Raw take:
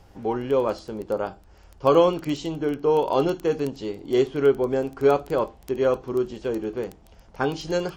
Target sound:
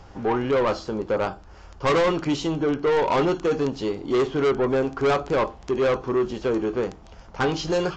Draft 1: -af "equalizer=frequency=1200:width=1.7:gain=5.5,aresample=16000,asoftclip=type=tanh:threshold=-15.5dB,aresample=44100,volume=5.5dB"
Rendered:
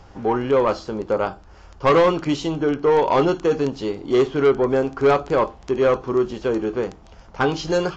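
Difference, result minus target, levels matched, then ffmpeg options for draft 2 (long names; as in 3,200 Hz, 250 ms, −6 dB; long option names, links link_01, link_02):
soft clipping: distortion −5 dB
-af "equalizer=frequency=1200:width=1.7:gain=5.5,aresample=16000,asoftclip=type=tanh:threshold=-22.5dB,aresample=44100,volume=5.5dB"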